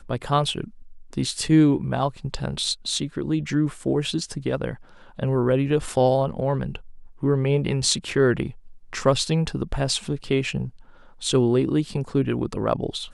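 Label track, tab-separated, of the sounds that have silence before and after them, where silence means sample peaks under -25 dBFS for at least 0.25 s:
1.130000	4.740000	sound
5.190000	6.760000	sound
7.230000	8.490000	sound
8.930000	10.660000	sound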